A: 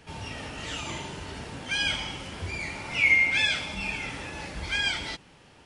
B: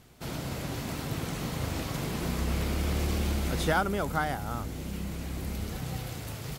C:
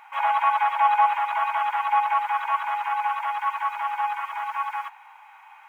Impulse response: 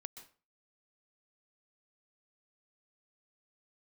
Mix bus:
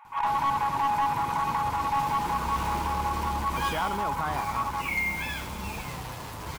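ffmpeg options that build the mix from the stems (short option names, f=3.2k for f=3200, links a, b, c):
-filter_complex "[0:a]highshelf=f=2.2k:g=-10,acrusher=bits=5:mix=0:aa=0.000001,asplit=2[a][b];[b]adelay=9.5,afreqshift=-0.9[c];[a][c]amix=inputs=2:normalize=1,adelay=1850,volume=-2.5dB[d];[1:a]adelay=50,volume=-4dB[e];[2:a]asoftclip=type=hard:threshold=-12.5dB,volume=-9.5dB[f];[e][f]amix=inputs=2:normalize=0,alimiter=limit=-24dB:level=0:latency=1:release=13,volume=0dB[g];[d][g]amix=inputs=2:normalize=0,equalizer=f=1k:t=o:w=0.52:g=12.5,aeval=exprs='clip(val(0),-1,0.075)':c=same"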